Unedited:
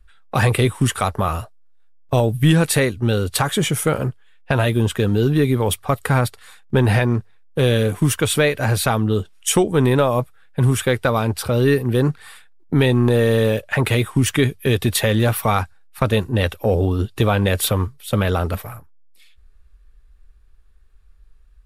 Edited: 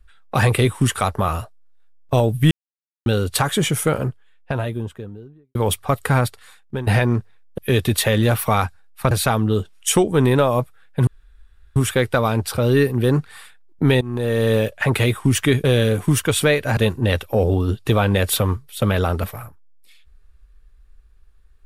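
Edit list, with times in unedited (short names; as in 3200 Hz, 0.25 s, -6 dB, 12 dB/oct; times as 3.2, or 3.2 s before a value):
2.51–3.06 mute
3.73–5.55 studio fade out
6.07–6.87 fade out equal-power, to -15.5 dB
7.58–8.71 swap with 14.55–16.08
10.67 insert room tone 0.69 s
12.92–13.45 fade in linear, from -18 dB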